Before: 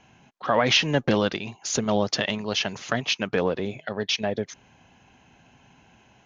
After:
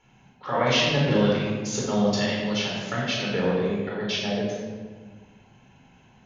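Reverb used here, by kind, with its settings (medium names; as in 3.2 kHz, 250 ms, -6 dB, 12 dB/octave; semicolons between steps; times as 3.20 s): simulated room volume 1300 m³, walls mixed, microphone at 4.3 m; trim -9 dB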